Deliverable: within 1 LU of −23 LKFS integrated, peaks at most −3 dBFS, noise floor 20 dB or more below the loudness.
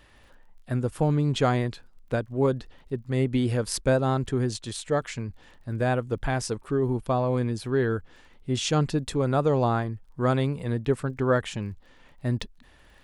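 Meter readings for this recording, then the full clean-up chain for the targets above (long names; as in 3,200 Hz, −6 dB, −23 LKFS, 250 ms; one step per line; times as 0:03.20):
crackle rate 24 per second; integrated loudness −27.0 LKFS; sample peak −11.0 dBFS; target loudness −23.0 LKFS
→ click removal
level +4 dB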